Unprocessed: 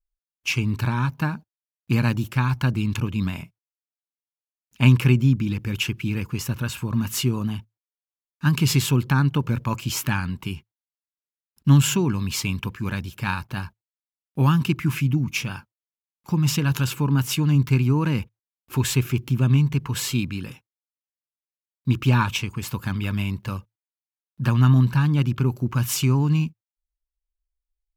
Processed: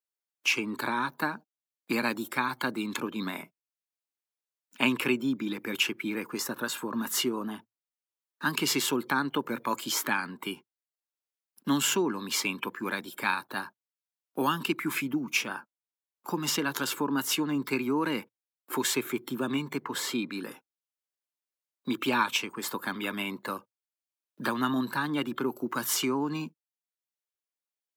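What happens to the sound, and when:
19.80–20.29 s: treble shelf 3.3 kHz -7.5 dB
whole clip: spectral noise reduction 12 dB; high-pass 280 Hz 24 dB/octave; three bands compressed up and down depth 40%

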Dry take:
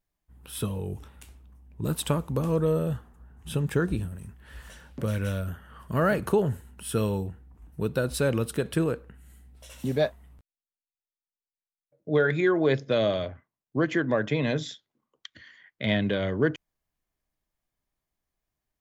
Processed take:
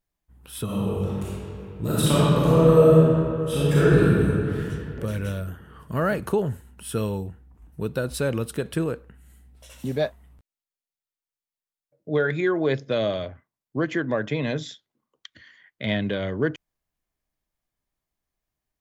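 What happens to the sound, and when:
0.64–4.59 s: reverb throw, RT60 2.7 s, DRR -9.5 dB

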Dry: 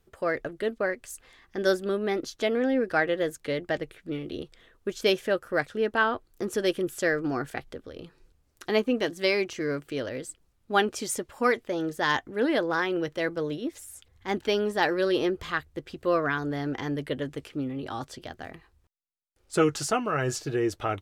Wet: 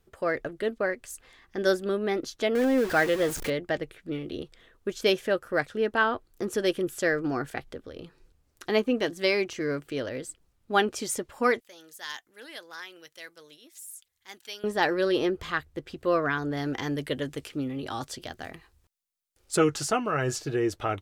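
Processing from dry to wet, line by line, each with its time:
2.55–3.50 s: jump at every zero crossing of -30 dBFS
11.60–14.64 s: pre-emphasis filter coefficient 0.97
16.57–19.57 s: treble shelf 3.3 kHz +8 dB

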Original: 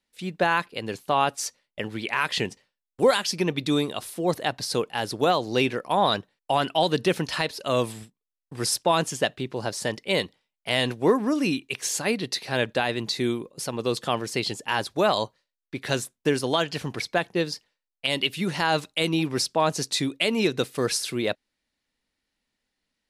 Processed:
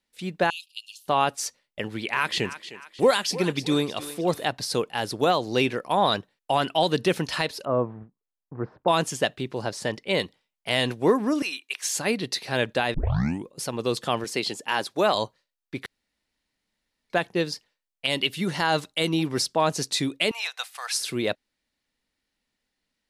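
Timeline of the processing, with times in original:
0.50–1.06 s: steep high-pass 2.7 kHz 96 dB/octave
1.85–4.46 s: thinning echo 308 ms, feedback 45%, level -13 dB
7.65–8.88 s: low-pass 1.3 kHz 24 dB/octave
9.62–10.20 s: treble shelf 6.6 kHz -8 dB
11.42–11.96 s: high-pass 970 Hz
12.94 s: tape start 0.52 s
14.24–15.15 s: high-pass 190 Hz
15.86–17.10 s: room tone
18.31–19.58 s: band-stop 2.5 kHz
20.31–20.95 s: elliptic high-pass 740 Hz, stop band 60 dB

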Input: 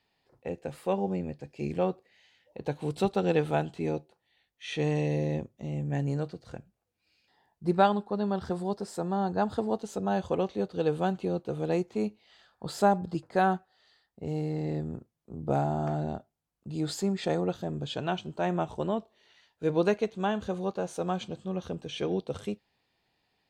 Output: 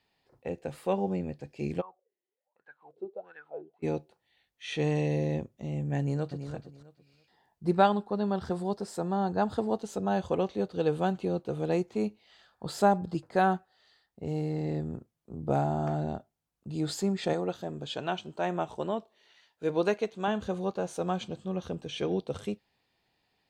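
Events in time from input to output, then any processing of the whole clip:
1.80–3.82 s: wah-wah 0.77 Hz -> 2.2 Hz 350–1600 Hz, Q 16
5.98–6.49 s: echo throw 330 ms, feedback 20%, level -9 dB
17.33–20.28 s: bass shelf 170 Hz -11 dB

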